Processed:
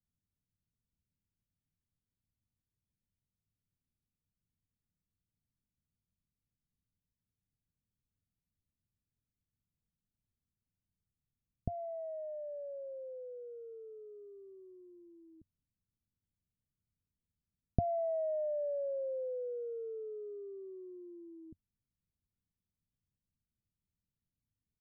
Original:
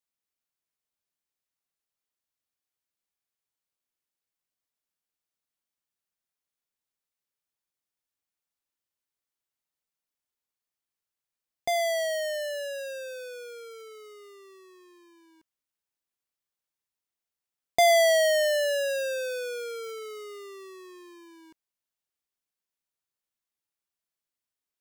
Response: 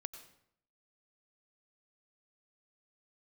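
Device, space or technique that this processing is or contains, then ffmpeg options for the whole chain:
the neighbour's flat through the wall: -af "lowpass=f=260:w=0.5412,lowpass=f=260:w=1.3066,equalizer=f=94:t=o:w=0.51:g=4,aecho=1:1:1.6:0.51,volume=5.96"

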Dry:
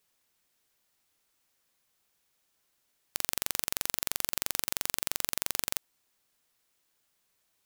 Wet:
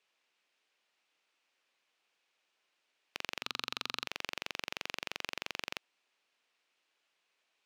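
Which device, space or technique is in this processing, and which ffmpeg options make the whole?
intercom: -filter_complex "[0:a]highpass=350,lowpass=4400,equalizer=f=2600:t=o:w=0.52:g=6,asoftclip=type=tanh:threshold=0.126,asettb=1/sr,asplit=3[s0][s1][s2];[s0]atrim=end=3.424[s3];[s1]atrim=start=3.42:end=4.07,asetpts=PTS-STARTPTS,afade=t=in:d=0.004:c=qsin,afade=t=out:st=0.646:d=0.004:c=qsin,equalizer=f=125:t=o:w=0.33:g=6,equalizer=f=250:t=o:w=0.33:g=5,equalizer=f=630:t=o:w=0.33:g=-12,equalizer=f=1250:t=o:w=0.33:g=9,equalizer=f=2000:t=o:w=0.33:g=-6,equalizer=f=4000:t=o:w=0.33:g=10[s4];[s2]atrim=start=4.066[s5];[s3][s4]acrossfade=d=0.004:c1=hsin:c2=qsin[s6];[s6][s5]acrossfade=d=0.004:c1=qsin:c2=hsin"

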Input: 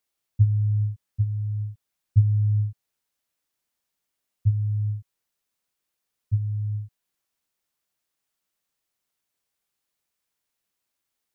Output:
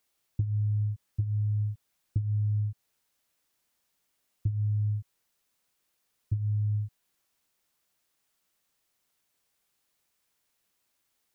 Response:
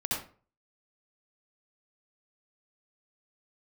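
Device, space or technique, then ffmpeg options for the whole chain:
serial compression, peaks first: -af "acompressor=threshold=0.0447:ratio=6,acompressor=threshold=0.0251:ratio=2.5,volume=1.78"

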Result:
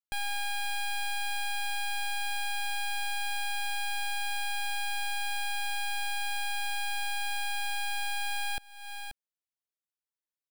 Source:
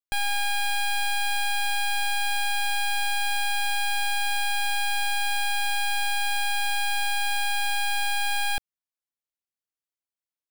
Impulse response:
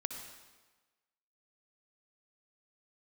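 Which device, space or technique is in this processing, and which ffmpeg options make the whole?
ducked delay: -filter_complex "[0:a]asplit=3[s0][s1][s2];[s1]adelay=533,volume=0.422[s3];[s2]apad=whole_len=486741[s4];[s3][s4]sidechaincompress=threshold=0.00447:ratio=5:attack=16:release=245[s5];[s0][s5]amix=inputs=2:normalize=0,volume=0.447"

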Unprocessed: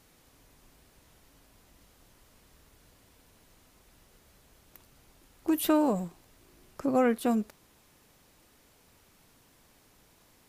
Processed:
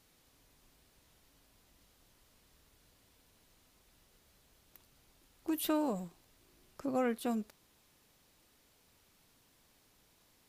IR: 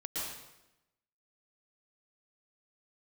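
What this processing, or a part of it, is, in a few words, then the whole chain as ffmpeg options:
presence and air boost: -af "equalizer=f=3900:t=o:w=1.3:g=4,highshelf=f=9600:g=3.5,volume=0.398"

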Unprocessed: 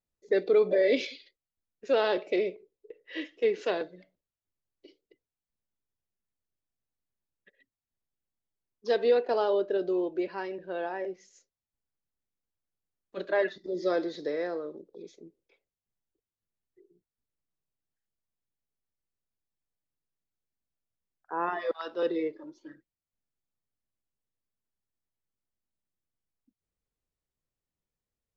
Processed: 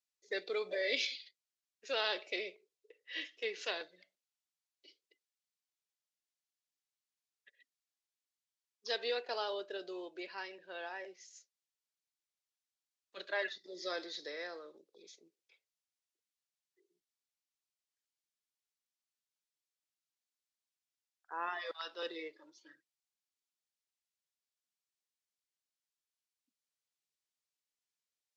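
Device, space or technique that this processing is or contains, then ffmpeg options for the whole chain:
piezo pickup straight into a mixer: -af "lowpass=5500,aderivative,volume=2.82"

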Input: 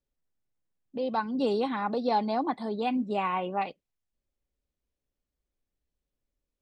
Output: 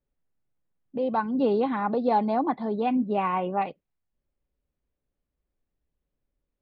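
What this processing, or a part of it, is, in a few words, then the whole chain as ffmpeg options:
phone in a pocket: -af "lowpass=3200,equalizer=f=150:t=o:w=0.42:g=3.5,highshelf=f=2500:g=-8,volume=1.58"

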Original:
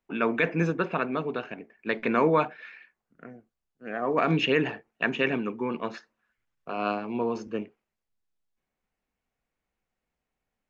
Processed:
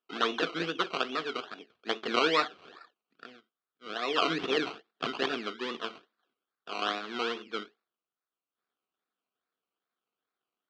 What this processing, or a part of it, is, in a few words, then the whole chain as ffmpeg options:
circuit-bent sampling toy: -af "acrusher=samples=20:mix=1:aa=0.000001:lfo=1:lforange=12:lforate=2.4,highpass=430,equalizer=f=570:t=q:w=4:g=-9,equalizer=f=890:t=q:w=4:g=-9,equalizer=f=1300:t=q:w=4:g=5,equalizer=f=2000:t=q:w=4:g=-4,equalizer=f=3200:t=q:w=4:g=6,lowpass=f=4500:w=0.5412,lowpass=f=4500:w=1.3066"

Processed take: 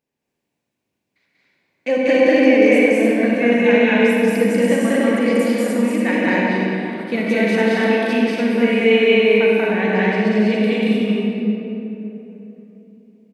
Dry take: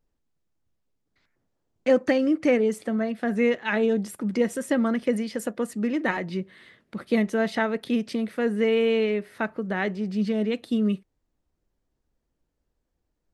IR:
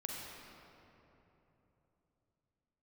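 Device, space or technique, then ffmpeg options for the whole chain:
stadium PA: -filter_complex "[0:a]highpass=170,equalizer=f=2400:t=o:w=0.46:g=8,aecho=1:1:189.5|227.4|288.6:1|0.891|0.708[s0];[1:a]atrim=start_sample=2205[s1];[s0][s1]afir=irnorm=-1:irlink=0,bandreject=f=1300:w=6.1,volume=1.5"

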